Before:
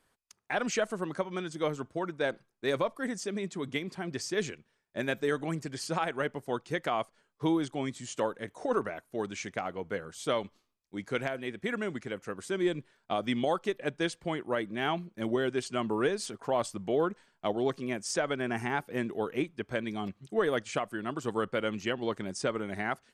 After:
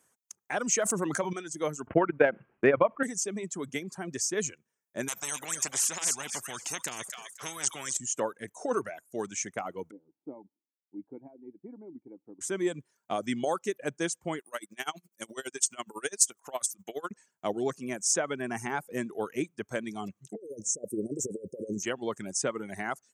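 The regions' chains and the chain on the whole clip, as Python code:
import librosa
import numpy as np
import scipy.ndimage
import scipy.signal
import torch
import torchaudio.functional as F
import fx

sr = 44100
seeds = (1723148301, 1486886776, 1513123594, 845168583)

y = fx.chain(x, sr, fx.self_delay(depth_ms=0.069),
    fx.env_flatten(amount_pct=70), at=(0.8, 1.33))
y = fx.chain(y, sr, fx.steep_lowpass(hz=3000.0, slope=72),
    fx.transient(attack_db=11, sustain_db=-11),
    fx.env_flatten(amount_pct=50), at=(1.87, 3.03))
y = fx.chain(y, sr, fx.high_shelf(hz=2700.0, db=-8.5),
    fx.echo_wet_highpass(ms=256, feedback_pct=31, hz=4300.0, wet_db=-5.5),
    fx.spectral_comp(ratio=10.0), at=(5.08, 7.97))
y = fx.chain(y, sr, fx.formant_cascade(vowel='u'),
    fx.low_shelf(hz=110.0, db=-7.0), at=(9.91, 12.41))
y = fx.chain(y, sr, fx.tilt_eq(slope=4.0),
    fx.tremolo_db(hz=12.0, depth_db=21), at=(14.39, 17.11))
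y = fx.chain(y, sr, fx.over_compress(threshold_db=-36.0, ratio=-0.5),
    fx.cheby1_bandstop(low_hz=570.0, high_hz=5400.0, order=5),
    fx.peak_eq(hz=430.0, db=8.5, octaves=0.7), at=(20.35, 21.83))
y = fx.dereverb_blind(y, sr, rt60_s=0.67)
y = scipy.signal.sosfilt(scipy.signal.butter(2, 110.0, 'highpass', fs=sr, output='sos'), y)
y = fx.high_shelf_res(y, sr, hz=5300.0, db=7.0, q=3.0)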